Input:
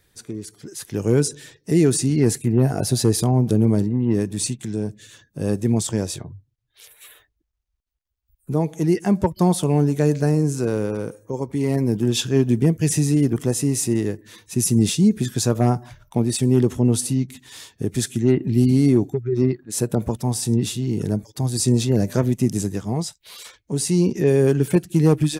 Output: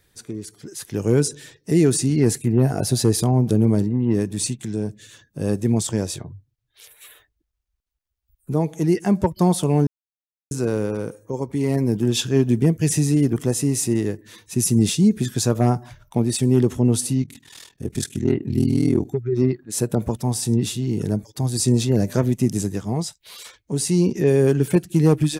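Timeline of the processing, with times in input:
9.87–10.51 mute
17.22–19.07 ring modulator 20 Hz

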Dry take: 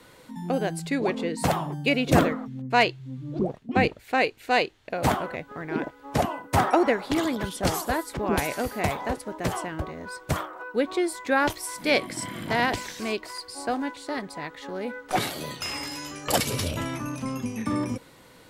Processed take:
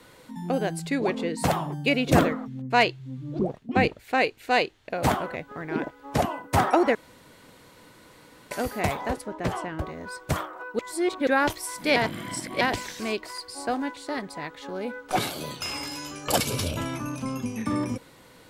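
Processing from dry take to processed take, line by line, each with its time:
6.95–8.51 room tone
9.26–9.79 high shelf 5900 Hz -11.5 dB
10.79–11.27 reverse
11.96–12.61 reverse
14.51–17.55 notch 1900 Hz, Q 8.3

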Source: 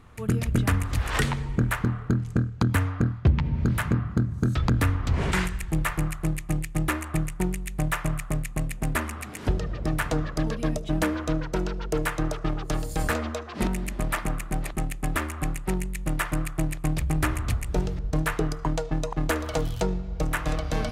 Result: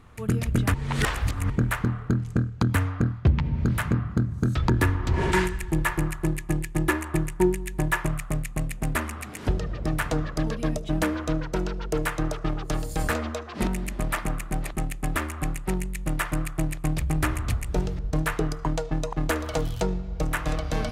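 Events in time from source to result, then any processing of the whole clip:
0.74–1.5 reverse
4.68–8.07 small resonant body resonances 360/930/1700 Hz, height 13 dB, ringing for 90 ms

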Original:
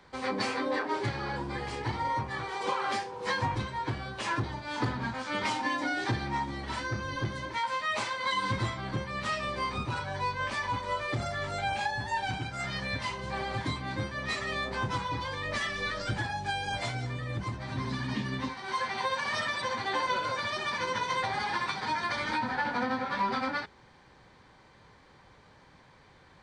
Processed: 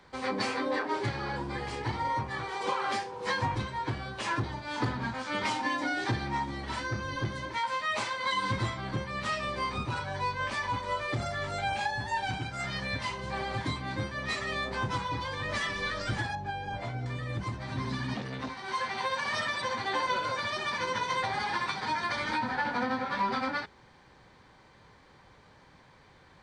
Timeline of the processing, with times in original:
14.81–15.62 echo throw 0.58 s, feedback 15%, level -11 dB
16.35–17.06 LPF 1000 Hz 6 dB/oct
18.14–19.14 core saturation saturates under 920 Hz

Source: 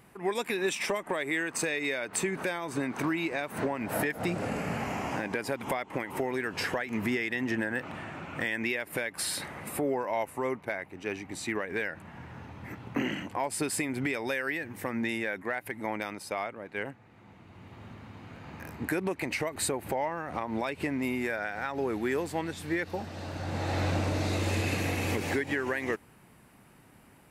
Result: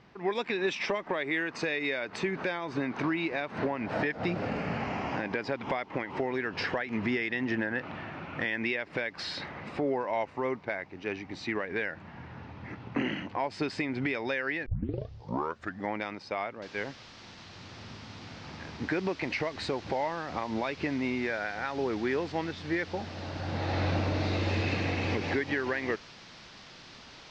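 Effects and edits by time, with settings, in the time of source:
14.66 tape start 1.28 s
16.62 noise floor step -67 dB -45 dB
whole clip: steep low-pass 5300 Hz 36 dB/oct

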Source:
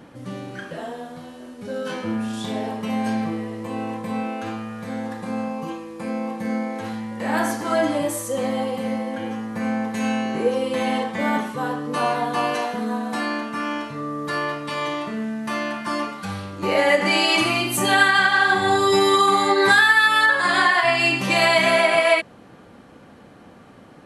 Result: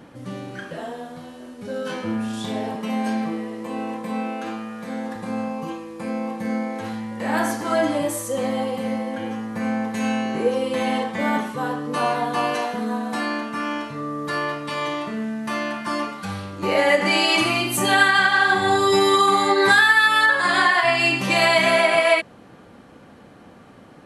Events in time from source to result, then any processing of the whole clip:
2.75–5.16 HPF 160 Hz 24 dB/oct

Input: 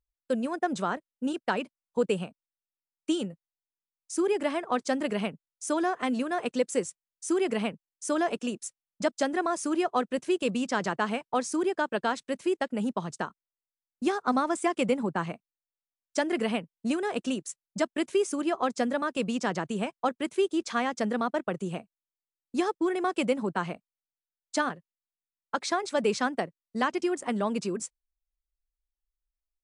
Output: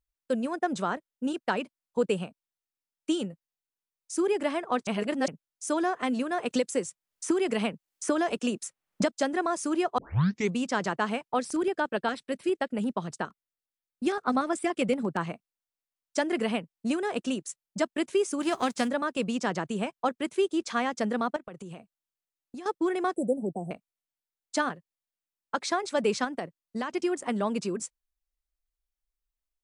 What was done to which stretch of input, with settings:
4.87–5.28 reverse
6.5–9.1 three-band squash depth 100%
9.98 tape start 0.57 s
11.33–15.21 LFO notch square 8.6 Hz 950–6600 Hz
18.4–18.87 spectral whitening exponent 0.6
21.36–22.66 compressor 16:1, threshold -37 dBFS
23.16–23.71 Chebyshev band-stop 750–8000 Hz, order 5
26.24–26.91 compressor, threshold -27 dBFS

